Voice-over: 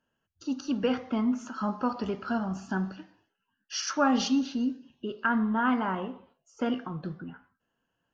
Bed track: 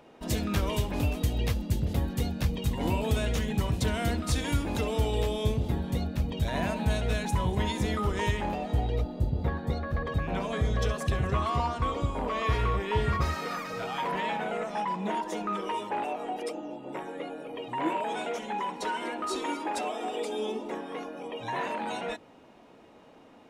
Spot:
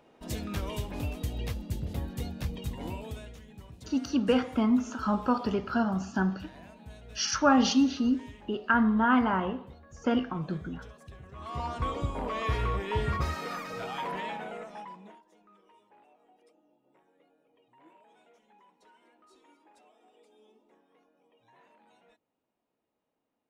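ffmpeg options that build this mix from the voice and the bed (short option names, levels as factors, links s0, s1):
-filter_complex "[0:a]adelay=3450,volume=1.33[s0];[1:a]volume=3.98,afade=t=out:st=2.6:d=0.77:silence=0.188365,afade=t=in:st=11.35:d=0.44:silence=0.125893,afade=t=out:st=13.9:d=1.31:silence=0.0446684[s1];[s0][s1]amix=inputs=2:normalize=0"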